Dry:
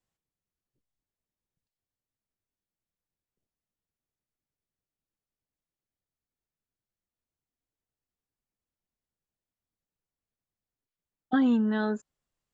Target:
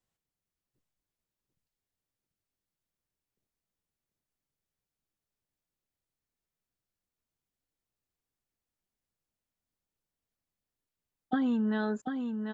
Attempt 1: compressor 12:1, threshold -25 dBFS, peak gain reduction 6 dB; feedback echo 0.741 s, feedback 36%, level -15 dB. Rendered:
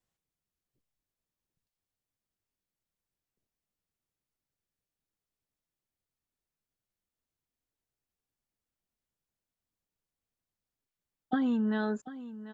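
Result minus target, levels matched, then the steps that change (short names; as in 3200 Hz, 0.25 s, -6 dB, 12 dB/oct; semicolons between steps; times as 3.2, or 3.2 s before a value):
echo-to-direct -9 dB
change: feedback echo 0.741 s, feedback 36%, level -6 dB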